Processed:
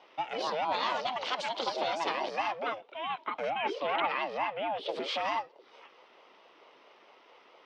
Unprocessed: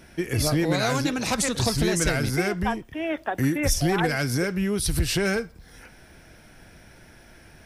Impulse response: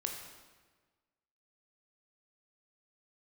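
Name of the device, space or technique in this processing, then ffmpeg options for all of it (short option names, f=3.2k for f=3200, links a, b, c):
voice changer toy: -filter_complex "[0:a]aeval=exprs='val(0)*sin(2*PI*410*n/s+410*0.25/4.5*sin(2*PI*4.5*n/s))':c=same,highpass=550,equalizer=f=910:t=q:w=4:g=5,equalizer=f=1.8k:t=q:w=4:g=-5,equalizer=f=3.2k:t=q:w=4:g=5,lowpass=f=4.2k:w=0.5412,lowpass=f=4.2k:w=1.3066,asettb=1/sr,asplit=3[a][b][c];[a]atrim=end=3.504[d];[b]atrim=start=3.5:end=4.89,asetpts=PTS-STARTPTS,afade=t=in:d=0.004:c=qsin,afade=t=out:st=1.386:d=0.004:c=qsin,highshelf=f=4.1k:t=q:w=1.5:g=-11.5[e];[c]atrim=start=4.886[f];[d][e]acrossfade=d=0.004:c1=hsin:c2=qsin[g];[g][f]acrossfade=d=0.004:c1=qsin:c2=hsin,volume=-3dB"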